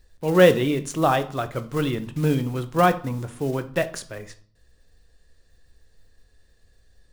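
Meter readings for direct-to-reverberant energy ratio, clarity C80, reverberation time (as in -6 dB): 10.0 dB, 20.0 dB, 0.55 s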